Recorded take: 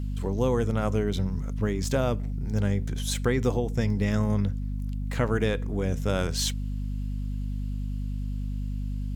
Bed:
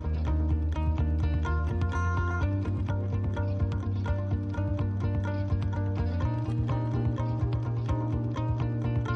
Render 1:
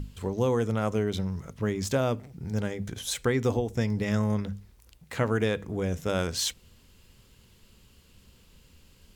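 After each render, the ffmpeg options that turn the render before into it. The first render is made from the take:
-af "bandreject=f=50:t=h:w=6,bandreject=f=100:t=h:w=6,bandreject=f=150:t=h:w=6,bandreject=f=200:t=h:w=6,bandreject=f=250:t=h:w=6"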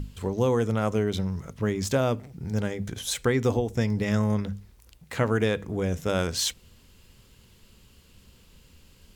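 -af "volume=1.26"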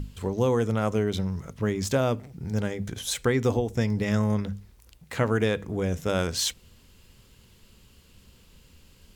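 -af anull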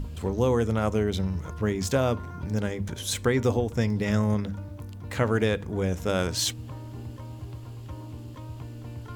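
-filter_complex "[1:a]volume=0.299[s0];[0:a][s0]amix=inputs=2:normalize=0"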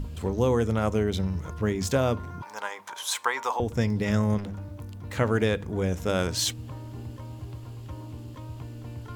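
-filter_complex "[0:a]asettb=1/sr,asplit=3[s0][s1][s2];[s0]atrim=end=2.424[s3];[s1]atrim=start=2.42:end=3.6,asetpts=PTS-STARTPTS,afade=t=in:d=0.004:c=qsin,afade=t=out:st=1.176:d=0.004:c=qsin,highpass=f=960:t=q:w=5.1[s4];[s2]atrim=start=3.596[s5];[s3][s4]acrossfade=d=0.004:c1=hsin:c2=qsin[s6];[s6][s5]acrossfade=d=0.004:c1=qsin:c2=hsin,asettb=1/sr,asplit=3[s7][s8][s9];[s7]atrim=end=4.384[s10];[s8]atrim=start=4.38:end=5.18,asetpts=PTS-STARTPTS,afade=t=in:d=0.004:c=qsin,afade=t=out:st=0.796:d=0.004:c=qsin,asoftclip=type=hard:threshold=0.0251[s11];[s9]atrim=start=5.176[s12];[s10][s11]acrossfade=d=0.004:c1=hsin:c2=qsin[s13];[s13][s12]acrossfade=d=0.004:c1=qsin:c2=hsin"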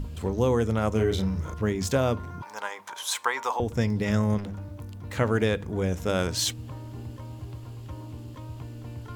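-filter_complex "[0:a]asettb=1/sr,asplit=3[s0][s1][s2];[s0]atrim=end=0.924[s3];[s1]atrim=start=0.92:end=1.54,asetpts=PTS-STARTPTS,afade=t=in:d=0.004:c=qsin,afade=t=out:st=0.616:d=0.004:c=qsin,asplit=2[s4][s5];[s5]adelay=36,volume=0.631[s6];[s4][s6]amix=inputs=2:normalize=0,atrim=end_sample=27342[s7];[s2]atrim=start=1.536[s8];[s3][s7]acrossfade=d=0.004:c1=hsin:c2=qsin[s9];[s9][s8]acrossfade=d=0.004:c1=qsin:c2=hsin"

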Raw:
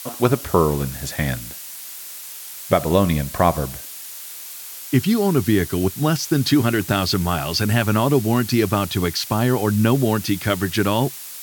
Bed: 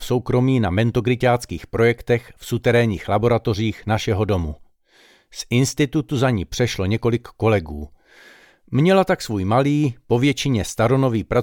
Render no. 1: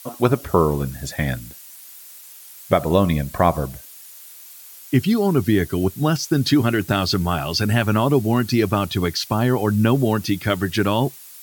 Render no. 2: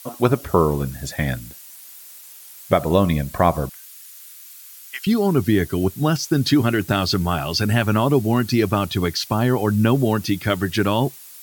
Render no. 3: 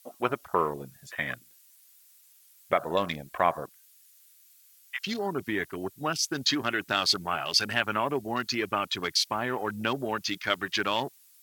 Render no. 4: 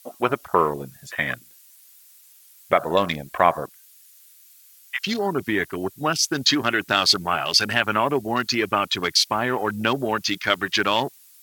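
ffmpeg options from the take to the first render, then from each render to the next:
-af "afftdn=nr=9:nf=-35"
-filter_complex "[0:a]asettb=1/sr,asplit=3[s0][s1][s2];[s0]atrim=end=3.694[s3];[s1]atrim=start=3.69:end=5.07,asetpts=PTS-STARTPTS,afade=t=in:d=0.004:c=qsin,afade=t=out:st=1.376:d=0.004:c=qsin,highpass=f=1100:w=0.5412,highpass=f=1100:w=1.3066[s4];[s2]atrim=start=5.066[s5];[s3][s4]acrossfade=d=0.004:c1=hsin:c2=qsin[s6];[s6][s5]acrossfade=d=0.004:c1=qsin:c2=hsin"
-af "highpass=f=1500:p=1,afwtdn=0.0158"
-af "volume=2.24,alimiter=limit=0.708:level=0:latency=1"

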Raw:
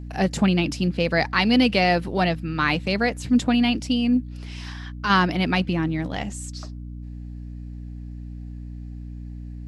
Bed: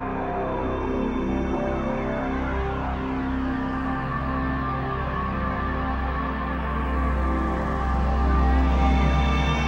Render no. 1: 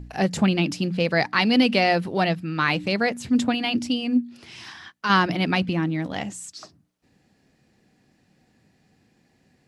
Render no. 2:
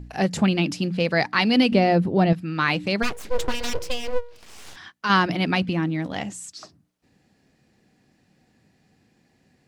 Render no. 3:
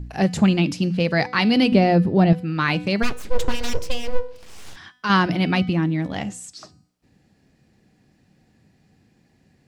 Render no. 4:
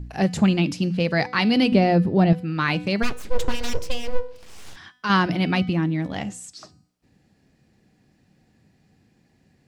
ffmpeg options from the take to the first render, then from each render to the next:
-af "bandreject=f=60:t=h:w=4,bandreject=f=120:t=h:w=4,bandreject=f=180:t=h:w=4,bandreject=f=240:t=h:w=4,bandreject=f=300:t=h:w=4"
-filter_complex "[0:a]asettb=1/sr,asplit=3[s0][s1][s2];[s0]atrim=end=1.724[s3];[s1]atrim=start=1.72:end=2.33,asetpts=PTS-STARTPTS,afade=t=in:d=0.004:c=qsin,afade=t=out:st=0.606:d=0.004:c=qsin,tiltshelf=f=730:g=8[s4];[s2]atrim=start=2.326[s5];[s3][s4]acrossfade=d=0.004:c1=hsin:c2=qsin[s6];[s6][s5]acrossfade=d=0.004:c1=qsin:c2=hsin,asplit=3[s7][s8][s9];[s7]afade=t=out:st=3.02:d=0.02[s10];[s8]aeval=exprs='abs(val(0))':c=same,afade=t=in:st=3.02:d=0.02,afade=t=out:st=4.75:d=0.02[s11];[s9]afade=t=in:st=4.75:d=0.02[s12];[s10][s11][s12]amix=inputs=3:normalize=0"
-af "lowshelf=f=210:g=7,bandreject=f=249.8:t=h:w=4,bandreject=f=499.6:t=h:w=4,bandreject=f=749.4:t=h:w=4,bandreject=f=999.2:t=h:w=4,bandreject=f=1249:t=h:w=4,bandreject=f=1498.8:t=h:w=4,bandreject=f=1748.6:t=h:w=4,bandreject=f=1998.4:t=h:w=4,bandreject=f=2248.2:t=h:w=4,bandreject=f=2498:t=h:w=4,bandreject=f=2747.8:t=h:w=4,bandreject=f=2997.6:t=h:w=4,bandreject=f=3247.4:t=h:w=4,bandreject=f=3497.2:t=h:w=4,bandreject=f=3747:t=h:w=4,bandreject=f=3996.8:t=h:w=4,bandreject=f=4246.6:t=h:w=4,bandreject=f=4496.4:t=h:w=4,bandreject=f=4746.2:t=h:w=4,bandreject=f=4996:t=h:w=4,bandreject=f=5245.8:t=h:w=4,bandreject=f=5495.6:t=h:w=4,bandreject=f=5745.4:t=h:w=4,bandreject=f=5995.2:t=h:w=4,bandreject=f=6245:t=h:w=4,bandreject=f=6494.8:t=h:w=4,bandreject=f=6744.6:t=h:w=4,bandreject=f=6994.4:t=h:w=4,bandreject=f=7244.2:t=h:w=4,bandreject=f=7494:t=h:w=4,bandreject=f=7743.8:t=h:w=4,bandreject=f=7993.6:t=h:w=4,bandreject=f=8243.4:t=h:w=4,bandreject=f=8493.2:t=h:w=4,bandreject=f=8743:t=h:w=4,bandreject=f=8992.8:t=h:w=4,bandreject=f=9242.6:t=h:w=4,bandreject=f=9492.4:t=h:w=4,bandreject=f=9742.2:t=h:w=4,bandreject=f=9992:t=h:w=4"
-af "volume=0.841"

